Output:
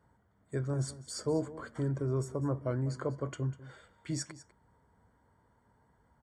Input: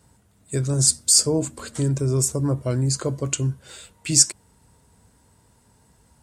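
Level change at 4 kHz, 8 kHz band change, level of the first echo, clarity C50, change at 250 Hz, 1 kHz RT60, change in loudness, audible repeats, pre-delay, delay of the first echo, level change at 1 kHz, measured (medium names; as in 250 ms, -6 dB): -23.0 dB, -27.0 dB, -16.5 dB, no reverb, -10.0 dB, no reverb, -15.0 dB, 1, no reverb, 198 ms, -5.5 dB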